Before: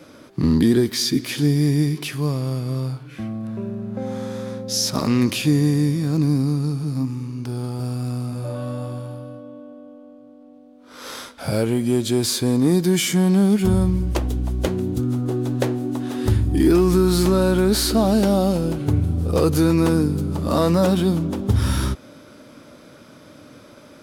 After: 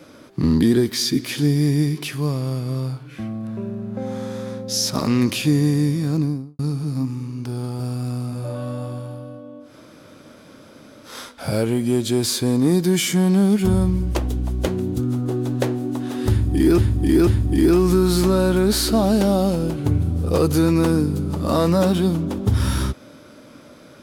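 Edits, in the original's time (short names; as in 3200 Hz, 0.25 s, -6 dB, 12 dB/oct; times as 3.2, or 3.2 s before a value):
6.09–6.59 studio fade out
9.67–11.1 room tone, crossfade 0.16 s
16.29–16.78 loop, 3 plays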